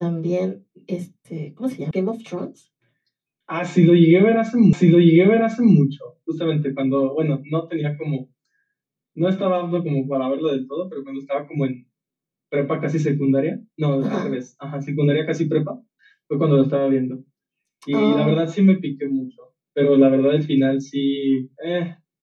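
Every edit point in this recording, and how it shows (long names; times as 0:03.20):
0:01.91: cut off before it has died away
0:04.73: the same again, the last 1.05 s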